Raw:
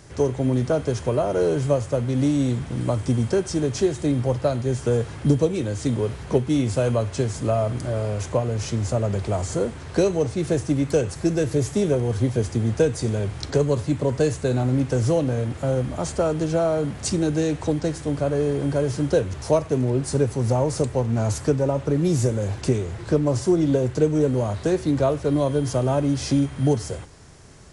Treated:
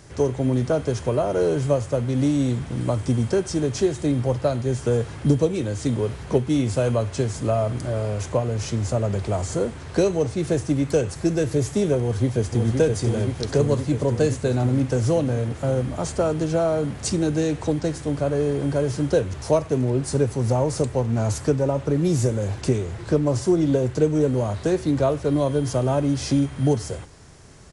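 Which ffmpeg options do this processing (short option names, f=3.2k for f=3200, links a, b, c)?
-filter_complex "[0:a]asplit=2[a][b];[b]afade=t=in:st=12:d=0.01,afade=t=out:st=12.72:d=0.01,aecho=0:1:520|1040|1560|2080|2600|3120|3640|4160|4680|5200|5720|6240:0.630957|0.473218|0.354914|0.266185|0.199639|0.149729|0.112297|0.0842226|0.063167|0.0473752|0.0355314|0.0266486[c];[a][c]amix=inputs=2:normalize=0"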